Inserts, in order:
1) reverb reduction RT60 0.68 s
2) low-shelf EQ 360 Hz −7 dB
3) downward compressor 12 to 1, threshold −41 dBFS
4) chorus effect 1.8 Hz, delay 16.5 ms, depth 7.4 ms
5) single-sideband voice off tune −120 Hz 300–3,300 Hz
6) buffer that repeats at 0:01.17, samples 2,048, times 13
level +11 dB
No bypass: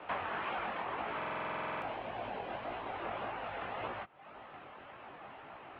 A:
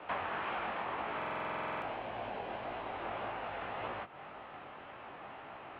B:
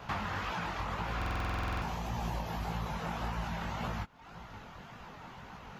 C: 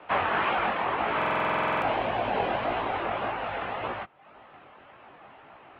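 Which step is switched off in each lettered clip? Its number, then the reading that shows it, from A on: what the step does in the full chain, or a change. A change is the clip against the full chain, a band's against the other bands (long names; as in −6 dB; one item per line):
1, change in momentary loudness spread −2 LU
5, 125 Hz band +15.5 dB
3, average gain reduction 8.0 dB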